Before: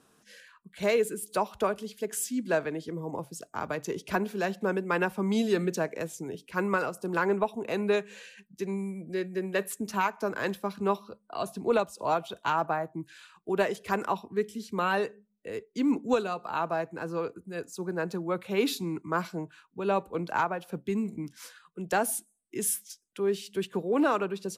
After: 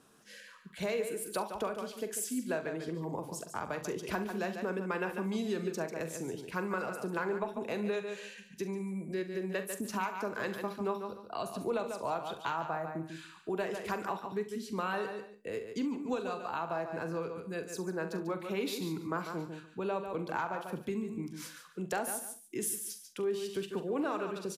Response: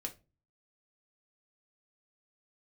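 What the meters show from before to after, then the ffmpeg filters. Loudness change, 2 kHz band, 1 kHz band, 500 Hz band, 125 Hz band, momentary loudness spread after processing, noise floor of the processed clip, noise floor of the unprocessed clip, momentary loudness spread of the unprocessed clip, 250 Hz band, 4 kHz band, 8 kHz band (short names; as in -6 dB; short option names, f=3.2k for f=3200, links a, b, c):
-6.0 dB, -6.0 dB, -6.5 dB, -6.0 dB, -4.5 dB, 6 LU, -55 dBFS, -69 dBFS, 11 LU, -5.5 dB, -5.0 dB, -4.0 dB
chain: -filter_complex "[0:a]asplit=2[a][b];[b]aecho=0:1:144|288:0.316|0.0506[c];[a][c]amix=inputs=2:normalize=0,acompressor=threshold=-35dB:ratio=2.5,asplit=2[d][e];[e]aecho=0:1:43|68:0.282|0.178[f];[d][f]amix=inputs=2:normalize=0"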